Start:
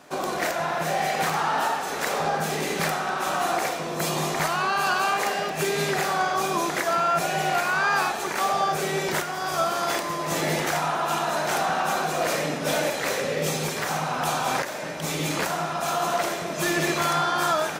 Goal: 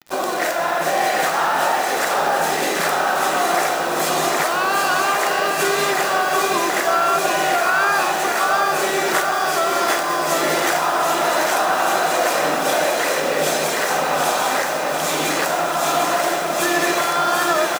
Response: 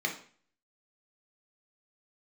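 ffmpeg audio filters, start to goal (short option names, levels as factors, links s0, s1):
-filter_complex "[0:a]highpass=290,alimiter=limit=0.15:level=0:latency=1:release=177,acrusher=bits=6:mix=0:aa=0.000001,aecho=1:1:739|1478|2217|2956|3695|4434|5173|5912:0.562|0.326|0.189|0.11|0.0636|0.0369|0.0214|0.0124,asplit=2[s0][s1];[1:a]atrim=start_sample=2205[s2];[s1][s2]afir=irnorm=-1:irlink=0,volume=0.119[s3];[s0][s3]amix=inputs=2:normalize=0,volume=2.24"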